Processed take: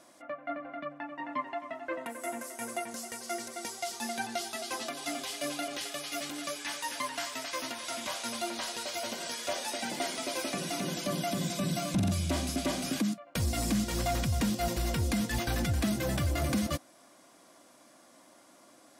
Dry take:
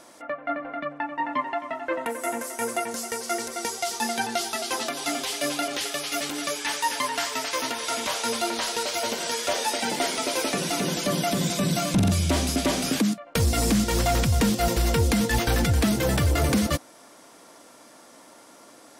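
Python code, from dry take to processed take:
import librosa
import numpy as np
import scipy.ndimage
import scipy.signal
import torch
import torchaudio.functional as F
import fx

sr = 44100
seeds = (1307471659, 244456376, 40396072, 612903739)

y = fx.notch_comb(x, sr, f0_hz=450.0)
y = F.gain(torch.from_numpy(y), -7.0).numpy()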